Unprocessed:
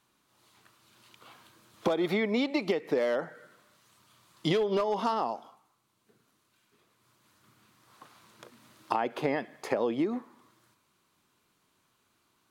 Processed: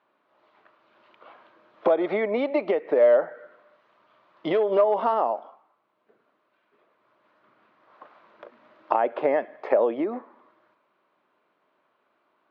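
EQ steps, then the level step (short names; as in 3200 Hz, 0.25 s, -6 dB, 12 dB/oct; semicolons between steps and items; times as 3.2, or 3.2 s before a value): BPF 360–2100 Hz; air absorption 150 m; bell 600 Hz +8.5 dB 0.39 oct; +5.5 dB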